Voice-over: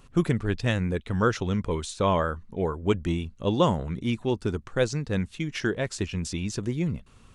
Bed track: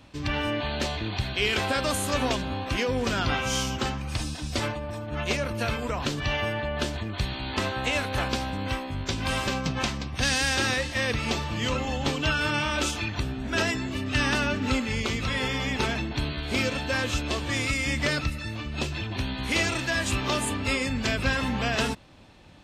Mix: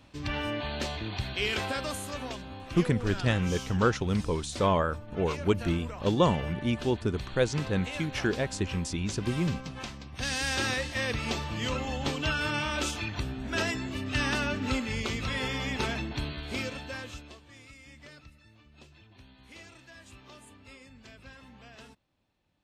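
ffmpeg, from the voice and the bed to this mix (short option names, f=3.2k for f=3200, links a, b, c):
-filter_complex "[0:a]adelay=2600,volume=-1.5dB[a];[1:a]volume=3dB,afade=t=out:st=1.54:d=0.64:silence=0.446684,afade=t=in:st=10.03:d=0.56:silence=0.421697,afade=t=out:st=16.08:d=1.33:silence=0.0944061[b];[a][b]amix=inputs=2:normalize=0"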